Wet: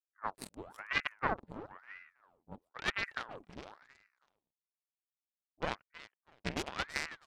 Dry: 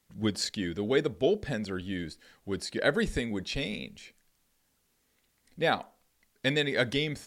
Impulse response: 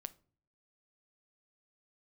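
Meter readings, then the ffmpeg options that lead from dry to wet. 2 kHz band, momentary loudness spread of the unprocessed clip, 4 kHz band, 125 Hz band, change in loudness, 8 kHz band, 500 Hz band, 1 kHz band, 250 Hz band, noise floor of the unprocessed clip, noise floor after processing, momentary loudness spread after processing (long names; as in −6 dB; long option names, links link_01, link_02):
−5.0 dB, 10 LU, −10.5 dB, −14.0 dB, −8.5 dB, −9.5 dB, −16.0 dB, −2.5 dB, −16.0 dB, −73 dBFS, below −85 dBFS, 19 LU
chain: -af "afwtdn=0.0178,equalizer=frequency=760:width_type=o:width=0.29:gain=-8.5,aeval=exprs='0.251*(cos(1*acos(clip(val(0)/0.251,-1,1)))-cos(1*PI/2))+0.112*(cos(4*acos(clip(val(0)/0.251,-1,1)))-cos(4*PI/2))+0.0355*(cos(7*acos(clip(val(0)/0.251,-1,1)))-cos(7*PI/2))':channel_layout=same,aecho=1:1:324|648:0.158|0.0365,aeval=exprs='val(0)*sin(2*PI*1100*n/s+1100*0.85/1*sin(2*PI*1*n/s))':channel_layout=same,volume=-8dB"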